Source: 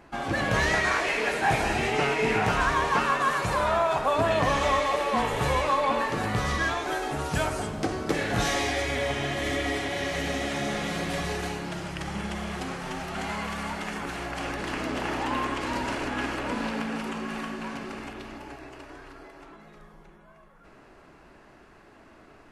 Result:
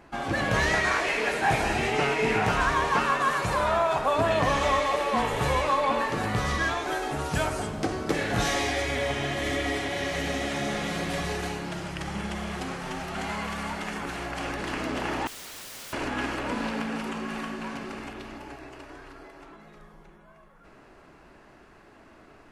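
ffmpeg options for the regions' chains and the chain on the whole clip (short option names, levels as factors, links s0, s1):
-filter_complex "[0:a]asettb=1/sr,asplit=3[s0][s1][s2];[s0]atrim=end=15.274[s3];[s1]atrim=start=15.27:end=15.93,asetpts=PTS-STARTPTS,afade=t=in:d=0.004:c=qsin,afade=t=out:st=0.656:d=0.004:c=qsin,acrossover=split=180|570[s4][s5][s6];[s4]acompressor=threshold=0.00891:ratio=4[s7];[s5]acompressor=threshold=0.00794:ratio=4[s8];[s6]acompressor=threshold=0.0224:ratio=4[s9];[s7][s8][s9]amix=inputs=3:normalize=0,aeval=exprs='(mod(70.8*val(0)+1,2)-1)/70.8':c=same[s10];[s2]atrim=start=15.926[s11];[s3][s10]acrossfade=d=0.004:c1=hsin:c2=qsin[s12];[s12][s11]acrossfade=d=0.004:c1=qsin:c2=hsin"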